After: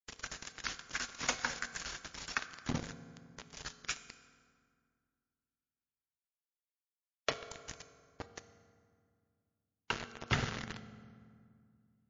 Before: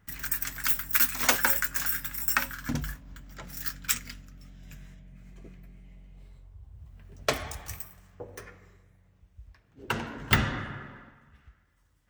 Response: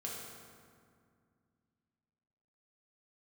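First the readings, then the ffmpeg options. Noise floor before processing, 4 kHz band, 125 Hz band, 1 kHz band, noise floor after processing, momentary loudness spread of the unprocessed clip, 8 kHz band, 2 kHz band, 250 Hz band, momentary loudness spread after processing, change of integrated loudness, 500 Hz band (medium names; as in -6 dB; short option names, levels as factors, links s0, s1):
-65 dBFS, -6.5 dB, -8.5 dB, -8.5 dB, under -85 dBFS, 23 LU, -10.5 dB, -9.0 dB, -8.0 dB, 18 LU, -12.5 dB, -7.5 dB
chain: -filter_complex "[0:a]adynamicequalizer=threshold=0.00316:dfrequency=140:dqfactor=1.4:tfrequency=140:tqfactor=1.4:attack=5:release=100:ratio=0.375:range=2:mode=boostabove:tftype=bell,acompressor=threshold=0.00631:ratio=2,aeval=exprs='val(0)*gte(abs(val(0)),0.0158)':c=same,asplit=2[s0][s1];[1:a]atrim=start_sample=2205[s2];[s1][s2]afir=irnorm=-1:irlink=0,volume=0.398[s3];[s0][s3]amix=inputs=2:normalize=0,volume=1.41" -ar 16000 -c:a libmp3lame -b:a 32k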